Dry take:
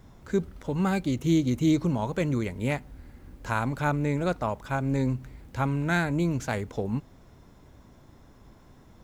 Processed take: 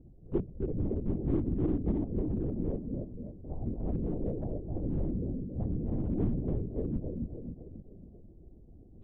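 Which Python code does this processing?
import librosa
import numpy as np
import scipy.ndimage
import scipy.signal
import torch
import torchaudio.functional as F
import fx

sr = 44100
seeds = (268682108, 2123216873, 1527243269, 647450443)

p1 = fx.rattle_buzz(x, sr, strikes_db=-36.0, level_db=-21.0)
p2 = fx.highpass(p1, sr, hz=55.0, slope=6)
p3 = fx.low_shelf(p2, sr, hz=350.0, db=-6.5)
p4 = p3 + fx.echo_feedback(p3, sr, ms=272, feedback_pct=48, wet_db=-3.5, dry=0)
p5 = fx.rider(p4, sr, range_db=4, speed_s=2.0)
p6 = scipy.signal.sosfilt(scipy.signal.cheby2(4, 50, 1300.0, 'lowpass', fs=sr, output='sos'), p5)
p7 = fx.low_shelf(p6, sr, hz=130.0, db=11.5)
p8 = 10.0 ** (-21.5 / 20.0) * (np.abs((p7 / 10.0 ** (-21.5 / 20.0) + 3.0) % 4.0 - 2.0) - 1.0)
p9 = p7 + F.gain(torch.from_numpy(p8), -9.0).numpy()
p10 = fx.lpc_vocoder(p9, sr, seeds[0], excitation='whisper', order=8)
y = F.gain(torch.from_numpy(p10), -7.0).numpy()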